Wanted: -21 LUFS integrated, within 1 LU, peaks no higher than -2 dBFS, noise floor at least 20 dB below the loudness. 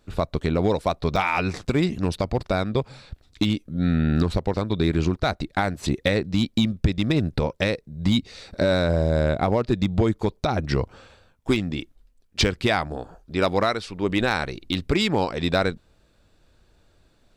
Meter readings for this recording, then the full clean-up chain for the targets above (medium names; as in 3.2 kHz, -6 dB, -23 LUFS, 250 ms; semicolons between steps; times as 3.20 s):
clipped samples 0.3%; clipping level -11.0 dBFS; dropouts 1; longest dropout 3.8 ms; loudness -24.0 LUFS; peak level -11.0 dBFS; loudness target -21.0 LUFS
-> clip repair -11 dBFS; interpolate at 1.16 s, 3.8 ms; trim +3 dB